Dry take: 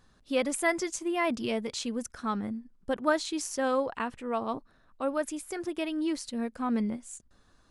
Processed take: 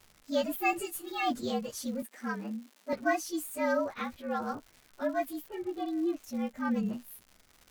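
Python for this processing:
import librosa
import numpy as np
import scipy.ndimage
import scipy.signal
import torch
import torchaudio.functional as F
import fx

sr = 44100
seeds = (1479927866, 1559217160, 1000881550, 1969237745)

y = fx.partial_stretch(x, sr, pct=113)
y = fx.lowpass(y, sr, hz=2100.0, slope=12, at=(5.47, 6.24))
y = fx.dmg_crackle(y, sr, seeds[0], per_s=230.0, level_db=-44.0)
y = fx.comb(y, sr, ms=6.9, depth=0.84, at=(0.72, 1.43))
y = fx.cheby1_highpass(y, sr, hz=220.0, order=4, at=(2.02, 2.93))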